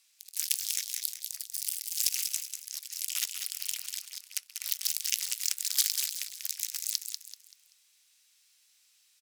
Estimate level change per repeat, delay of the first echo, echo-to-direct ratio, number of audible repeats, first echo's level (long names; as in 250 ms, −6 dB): −9.5 dB, 192 ms, −6.0 dB, 4, −6.5 dB